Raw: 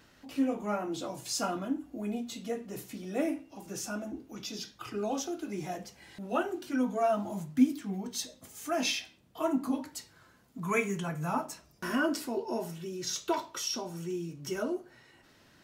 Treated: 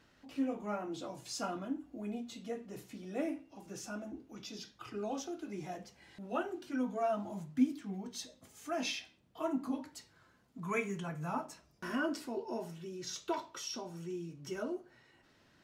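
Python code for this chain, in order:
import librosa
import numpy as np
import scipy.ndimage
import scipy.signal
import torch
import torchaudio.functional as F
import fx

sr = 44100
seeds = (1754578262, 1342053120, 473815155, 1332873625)

y = fx.high_shelf(x, sr, hz=9500.0, db=-11.0)
y = y * 10.0 ** (-5.5 / 20.0)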